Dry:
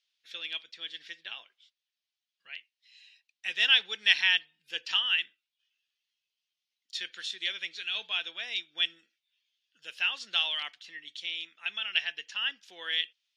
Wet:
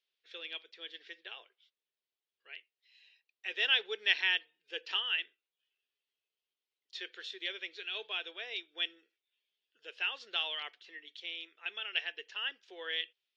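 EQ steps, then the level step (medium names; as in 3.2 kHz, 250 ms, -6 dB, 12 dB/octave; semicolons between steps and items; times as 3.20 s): resonant high-pass 410 Hz, resonance Q 4.9; distance through air 90 m; treble shelf 7.1 kHz -9 dB; -3.5 dB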